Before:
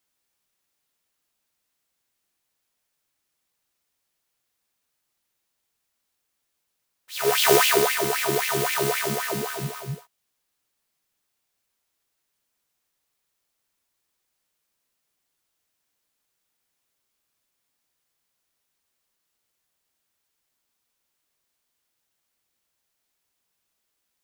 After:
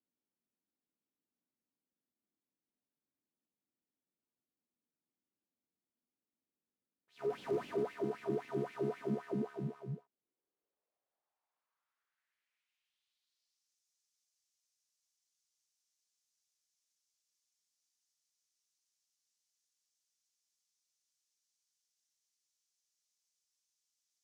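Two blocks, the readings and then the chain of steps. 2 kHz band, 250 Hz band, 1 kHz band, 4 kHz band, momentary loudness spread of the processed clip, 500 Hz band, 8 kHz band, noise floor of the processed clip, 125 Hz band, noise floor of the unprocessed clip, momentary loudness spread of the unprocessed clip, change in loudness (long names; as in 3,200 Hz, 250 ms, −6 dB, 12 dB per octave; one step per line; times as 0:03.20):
−27.5 dB, −7.0 dB, −21.0 dB, −33.5 dB, 6 LU, −13.0 dB, below −35 dB, below −85 dBFS, −10.5 dB, −78 dBFS, 18 LU, −17.5 dB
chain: gain into a clipping stage and back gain 21 dB
band-pass filter sweep 250 Hz → 6,000 Hz, 0:09.97–0:13.73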